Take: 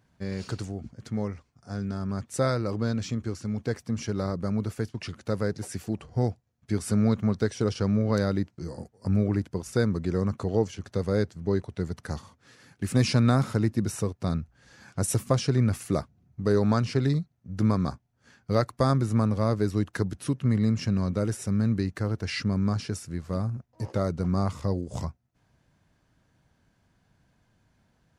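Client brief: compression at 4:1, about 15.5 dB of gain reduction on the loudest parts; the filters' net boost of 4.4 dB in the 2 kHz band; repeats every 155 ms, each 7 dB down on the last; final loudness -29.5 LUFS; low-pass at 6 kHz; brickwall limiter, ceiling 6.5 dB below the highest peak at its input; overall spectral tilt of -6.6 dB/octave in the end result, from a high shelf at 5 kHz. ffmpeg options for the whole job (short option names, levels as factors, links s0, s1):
-af "lowpass=6000,equalizer=f=2000:t=o:g=6.5,highshelf=f=5000:g=-4.5,acompressor=threshold=0.0141:ratio=4,alimiter=level_in=1.58:limit=0.0631:level=0:latency=1,volume=0.631,aecho=1:1:155|310|465|620|775:0.447|0.201|0.0905|0.0407|0.0183,volume=3.76"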